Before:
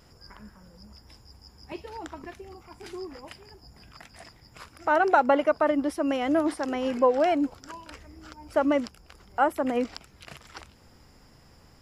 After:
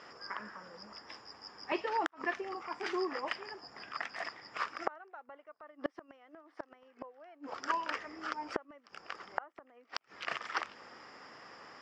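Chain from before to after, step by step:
loudspeaker in its box 410–5,300 Hz, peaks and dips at 1,200 Hz +7 dB, 1,800 Hz +6 dB, 4,000 Hz −7 dB
gate with flip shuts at −22 dBFS, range −38 dB
level +6.5 dB

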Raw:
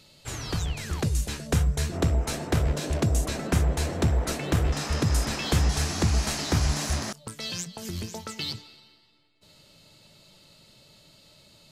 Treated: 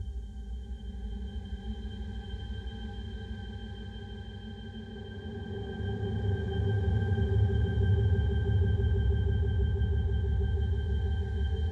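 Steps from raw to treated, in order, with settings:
extreme stretch with random phases 19×, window 0.25 s, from 0:01.19
resonances in every octave G, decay 0.12 s
echo that builds up and dies away 162 ms, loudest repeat 8, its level −11 dB

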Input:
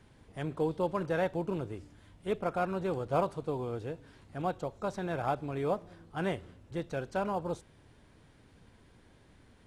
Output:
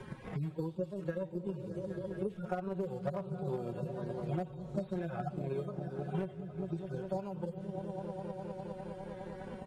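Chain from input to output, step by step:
harmonic-percussive split with one part muted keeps harmonic
source passing by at 0:04.32, 7 m/s, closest 9.4 metres
comb filter 5.4 ms, depth 61%
on a send: echo whose low-pass opens from repeat to repeat 204 ms, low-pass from 200 Hz, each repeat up 1 octave, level −6 dB
on the sum: gain into a clipping stage and back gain 27 dB
transient designer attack +8 dB, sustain 0 dB
multiband upward and downward compressor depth 100%
level −3 dB

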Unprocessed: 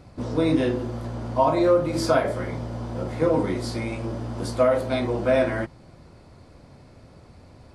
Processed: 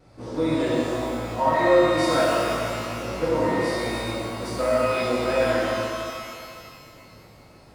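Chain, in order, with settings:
low-shelf EQ 240 Hz −5 dB
pitch vibrato 1.4 Hz 28 cents
reverb with rising layers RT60 2.3 s, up +12 semitones, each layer −8 dB, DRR −7 dB
level −6.5 dB

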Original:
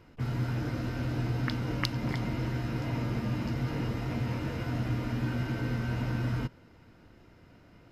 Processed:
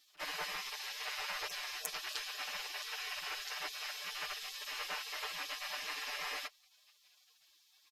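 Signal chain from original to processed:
gate on every frequency bin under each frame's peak −30 dB weak
comb filter 6.7 ms, depth 92%
level +7 dB

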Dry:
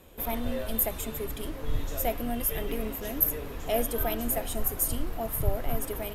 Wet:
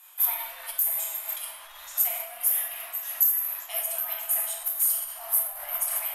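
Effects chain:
reverb reduction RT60 1.4 s
rectangular room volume 200 cubic metres, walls hard, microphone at 0.91 metres
in parallel at +1.5 dB: brickwall limiter −16.5 dBFS, peak gain reduction 8.5 dB
on the sum: parametric band 11,000 Hz +13 dB 1.1 octaves
soft clipping −2.5 dBFS, distortion −19 dB
speech leveller within 4 dB 0.5 s
inverse Chebyshev high-pass filter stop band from 440 Hz, stop band 40 dB
amplitude modulation by smooth noise, depth 55%
level −7.5 dB

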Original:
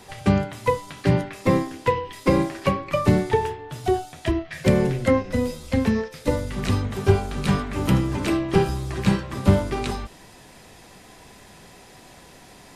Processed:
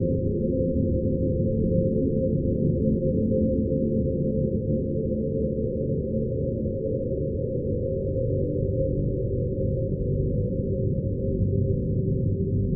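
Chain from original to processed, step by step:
sub-harmonics by changed cycles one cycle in 3, muted
extreme stretch with random phases 12×, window 1.00 s, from 0:05.63
Chebyshev low-pass with heavy ripple 550 Hz, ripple 9 dB
level +7 dB

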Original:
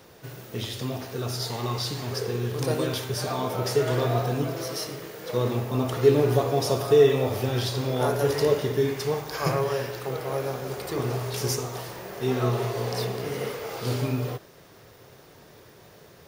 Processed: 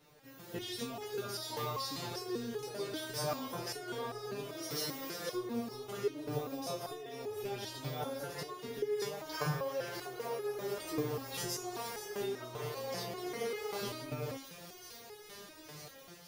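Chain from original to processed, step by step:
automatic gain control gain up to 11.5 dB
on a send: delay with a high-pass on its return 475 ms, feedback 81%, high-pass 2,900 Hz, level −13 dB
on the sum: downward compressor 6 to 1, threshold −21 dBFS, peak gain reduction 14 dB
step-sequenced resonator 5.1 Hz 150–420 Hz

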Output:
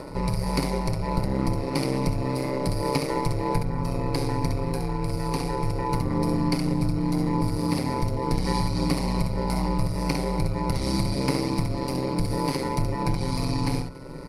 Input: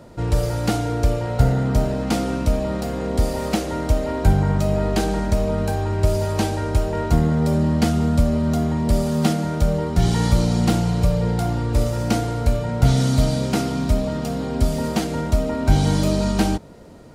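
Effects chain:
EQ curve with evenly spaced ripples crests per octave 0.89, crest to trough 14 dB
upward compression, threshold −28 dBFS
dynamic equaliser 180 Hz, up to −7 dB, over −35 dBFS, Q 3.8
downward compressor 16 to 1, threshold −18 dBFS, peak gain reduction 14 dB
ambience of single reflections 33 ms −18 dB, 76 ms −5 dB
steady tone 1,400 Hz −52 dBFS
on a send: single-tap delay 340 ms −23 dB
on the sum: ring modulation 66 Hz
tempo change 1.2×

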